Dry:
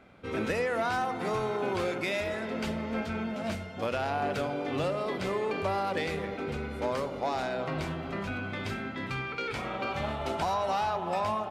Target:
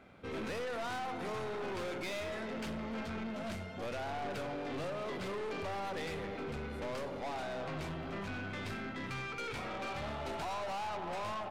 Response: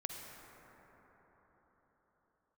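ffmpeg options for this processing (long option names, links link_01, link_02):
-af "aeval=exprs='(tanh(56.2*val(0)+0.25)-tanh(0.25))/56.2':channel_layout=same,volume=-1.5dB"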